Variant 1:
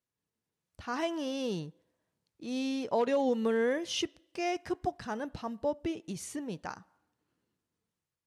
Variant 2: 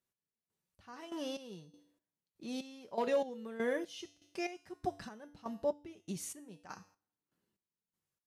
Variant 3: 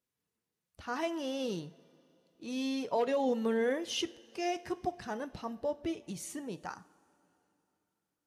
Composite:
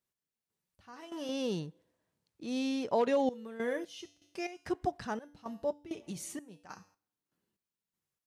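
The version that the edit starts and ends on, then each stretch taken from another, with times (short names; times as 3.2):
2
1.29–3.29 from 1
4.66–5.19 from 1
5.91–6.39 from 3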